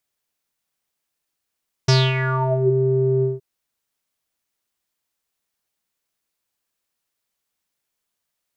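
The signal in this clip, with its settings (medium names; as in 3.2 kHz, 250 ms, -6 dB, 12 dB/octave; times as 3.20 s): synth note square C3 12 dB/octave, low-pass 360 Hz, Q 7.5, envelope 4 oct, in 0.82 s, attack 8.3 ms, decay 0.24 s, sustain -9 dB, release 0.17 s, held 1.35 s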